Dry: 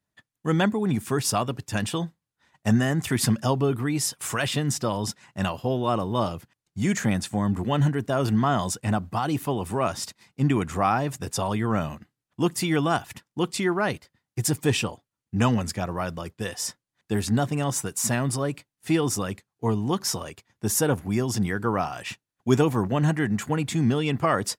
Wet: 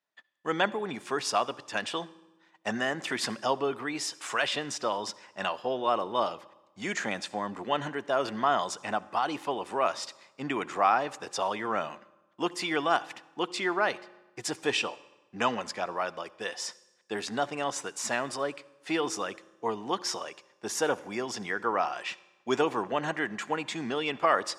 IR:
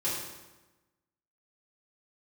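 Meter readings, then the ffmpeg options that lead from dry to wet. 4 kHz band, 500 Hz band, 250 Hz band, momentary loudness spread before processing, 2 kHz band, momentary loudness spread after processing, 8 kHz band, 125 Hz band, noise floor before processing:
-1.5 dB, -3.0 dB, -11.5 dB, 9 LU, 0.0 dB, 10 LU, -8.0 dB, -21.5 dB, under -85 dBFS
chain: -filter_complex "[0:a]highpass=490,lowpass=5000,asplit=2[s0][s1];[1:a]atrim=start_sample=2205,adelay=63[s2];[s1][s2]afir=irnorm=-1:irlink=0,volume=0.0447[s3];[s0][s3]amix=inputs=2:normalize=0"

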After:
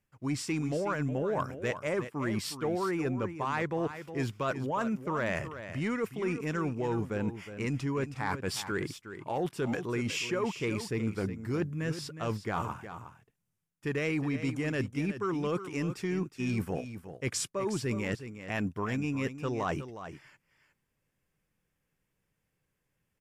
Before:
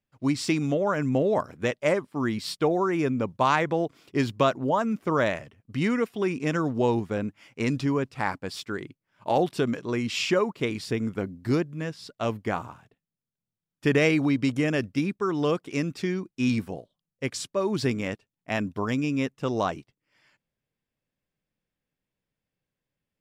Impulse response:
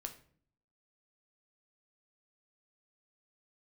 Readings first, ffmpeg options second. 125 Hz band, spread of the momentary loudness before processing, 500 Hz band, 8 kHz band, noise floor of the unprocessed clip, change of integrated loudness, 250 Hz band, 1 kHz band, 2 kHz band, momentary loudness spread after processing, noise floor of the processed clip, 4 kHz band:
-3.5 dB, 10 LU, -7.0 dB, -1.0 dB, under -85 dBFS, -6.5 dB, -6.5 dB, -7.0 dB, -5.0 dB, 5 LU, -81 dBFS, -6.5 dB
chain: -af "equalizer=f=250:t=o:w=0.67:g=-5,equalizer=f=630:t=o:w=0.67:g=-5,equalizer=f=4000:t=o:w=0.67:g=-9,areverse,acompressor=threshold=0.0158:ratio=6,areverse,asoftclip=type=tanh:threshold=0.0398,aecho=1:1:364:0.282,volume=2.51" -ar 32000 -c:a libmp3lame -b:a 80k

